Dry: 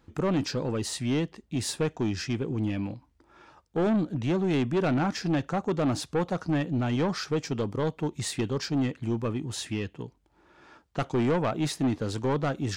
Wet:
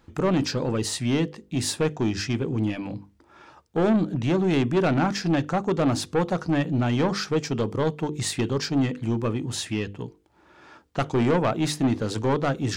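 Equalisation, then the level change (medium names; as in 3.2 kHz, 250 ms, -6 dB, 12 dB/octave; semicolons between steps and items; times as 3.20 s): hum notches 50/100/150/200/250/300/350/400/450/500 Hz; +4.5 dB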